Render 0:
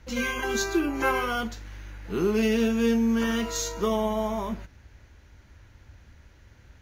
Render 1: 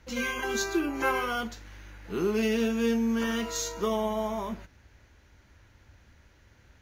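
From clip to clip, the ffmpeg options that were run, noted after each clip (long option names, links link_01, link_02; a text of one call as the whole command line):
ffmpeg -i in.wav -af "lowshelf=frequency=150:gain=-5.5,volume=-2dB" out.wav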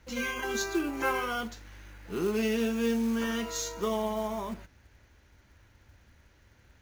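ffmpeg -i in.wav -af "acrusher=bits=5:mode=log:mix=0:aa=0.000001,volume=-2dB" out.wav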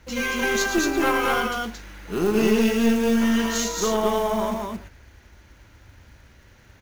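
ffmpeg -i in.wav -af "aecho=1:1:113.7|224.5:0.355|0.794,aeval=exprs='(tanh(8.91*val(0)+0.5)-tanh(0.5))/8.91':channel_layout=same,volume=9dB" out.wav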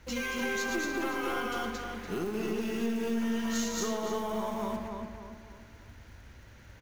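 ffmpeg -i in.wav -filter_complex "[0:a]acompressor=threshold=-28dB:ratio=6,asplit=2[link_01][link_02];[link_02]adelay=290,lowpass=frequency=2800:poles=1,volume=-4dB,asplit=2[link_03][link_04];[link_04]adelay=290,lowpass=frequency=2800:poles=1,volume=0.43,asplit=2[link_05][link_06];[link_06]adelay=290,lowpass=frequency=2800:poles=1,volume=0.43,asplit=2[link_07][link_08];[link_08]adelay=290,lowpass=frequency=2800:poles=1,volume=0.43,asplit=2[link_09][link_10];[link_10]adelay=290,lowpass=frequency=2800:poles=1,volume=0.43[link_11];[link_03][link_05][link_07][link_09][link_11]amix=inputs=5:normalize=0[link_12];[link_01][link_12]amix=inputs=2:normalize=0,volume=-3dB" out.wav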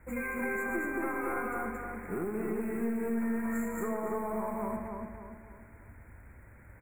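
ffmpeg -i in.wav -af "asuperstop=centerf=4300:order=20:qfactor=0.85,volume=-1dB" out.wav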